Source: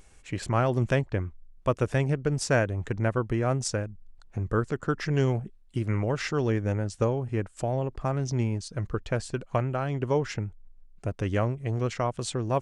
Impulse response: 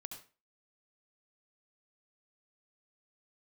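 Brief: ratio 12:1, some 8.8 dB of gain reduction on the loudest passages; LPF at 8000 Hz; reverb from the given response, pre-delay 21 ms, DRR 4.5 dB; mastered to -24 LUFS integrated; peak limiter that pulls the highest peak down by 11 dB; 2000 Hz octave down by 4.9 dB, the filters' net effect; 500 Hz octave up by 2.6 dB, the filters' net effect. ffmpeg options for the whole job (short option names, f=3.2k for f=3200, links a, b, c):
-filter_complex "[0:a]lowpass=8k,equalizer=f=500:t=o:g=3.5,equalizer=f=2k:t=o:g=-7,acompressor=threshold=-27dB:ratio=12,alimiter=level_in=4.5dB:limit=-24dB:level=0:latency=1,volume=-4.5dB,asplit=2[a][b];[1:a]atrim=start_sample=2205,adelay=21[c];[b][c]afir=irnorm=-1:irlink=0,volume=-0.5dB[d];[a][d]amix=inputs=2:normalize=0,volume=13dB"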